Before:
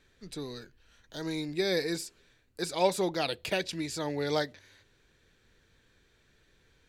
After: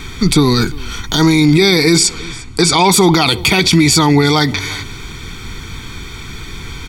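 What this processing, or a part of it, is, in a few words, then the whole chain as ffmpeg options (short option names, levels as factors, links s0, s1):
loud club master: -filter_complex "[0:a]asettb=1/sr,asplit=3[s0][s1][s2];[s0]atrim=end=1.974[s3];[s1]atrim=start=1.97:end=2.88,asetpts=PTS-STARTPTS,afade=t=in:d=0.004:c=qsin,afade=t=out:st=0.906:d=0.004:c=qsin,lowpass=f=9100:w=0.5412,lowpass=f=9100:w=1.3066[s4];[s2]atrim=start=2.876[s5];[s3][s4]acrossfade=d=0.004:c1=hsin:c2=qsin[s6];[s6][s5]acrossfade=d=0.004:c1=qsin:c2=hsin,aecho=1:1:0.9:0.86,acompressor=threshold=0.02:ratio=2.5,asoftclip=type=hard:threshold=0.0668,alimiter=level_in=59.6:limit=0.891:release=50:level=0:latency=1,aecho=1:1:350:0.0794,volume=0.891"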